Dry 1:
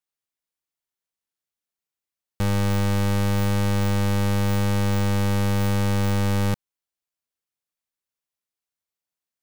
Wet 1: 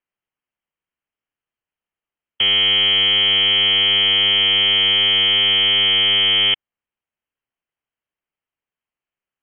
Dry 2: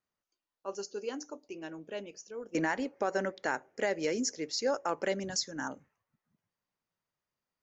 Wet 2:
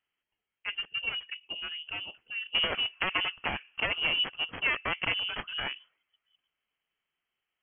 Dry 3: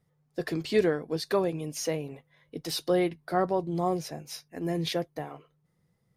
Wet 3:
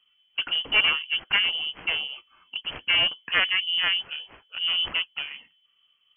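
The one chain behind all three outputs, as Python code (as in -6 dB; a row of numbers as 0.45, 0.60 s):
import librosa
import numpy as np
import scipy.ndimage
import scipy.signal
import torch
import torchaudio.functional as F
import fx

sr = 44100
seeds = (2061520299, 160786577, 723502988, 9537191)

y = fx.self_delay(x, sr, depth_ms=0.52)
y = fx.dynamic_eq(y, sr, hz=620.0, q=3.6, threshold_db=-47.0, ratio=4.0, max_db=-7)
y = fx.freq_invert(y, sr, carrier_hz=3200)
y = F.gain(torch.from_numpy(y), 5.0).numpy()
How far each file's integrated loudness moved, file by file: +10.5, +4.0, +6.5 LU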